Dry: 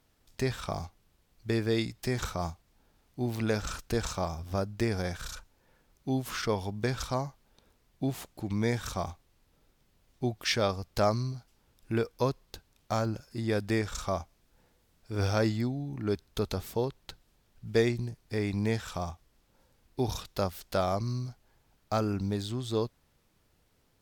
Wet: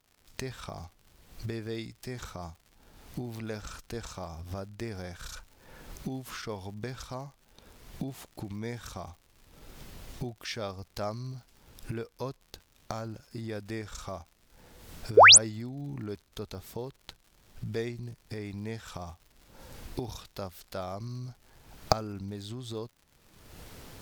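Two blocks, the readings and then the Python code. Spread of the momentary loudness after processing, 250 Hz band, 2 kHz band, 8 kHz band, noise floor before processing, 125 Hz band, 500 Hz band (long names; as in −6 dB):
12 LU, −7.0 dB, +8.5 dB, +14.0 dB, −70 dBFS, −6.5 dB, −2.0 dB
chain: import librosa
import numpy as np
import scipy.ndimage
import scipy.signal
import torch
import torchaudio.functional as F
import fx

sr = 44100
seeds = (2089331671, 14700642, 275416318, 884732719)

y = fx.recorder_agc(x, sr, target_db=-22.5, rise_db_per_s=39.0, max_gain_db=30)
y = fx.spec_paint(y, sr, seeds[0], shape='rise', start_s=15.17, length_s=0.21, low_hz=370.0, high_hz=11000.0, level_db=-4.0)
y = fx.dmg_crackle(y, sr, seeds[1], per_s=130.0, level_db=-38.0)
y = y * librosa.db_to_amplitude(-8.5)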